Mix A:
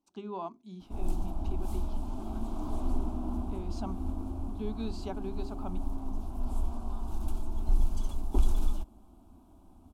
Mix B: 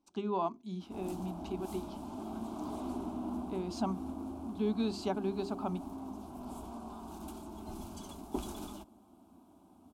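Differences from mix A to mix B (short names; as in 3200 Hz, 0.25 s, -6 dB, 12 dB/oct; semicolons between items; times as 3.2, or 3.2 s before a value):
speech +5.0 dB; background: add HPF 160 Hz 12 dB/oct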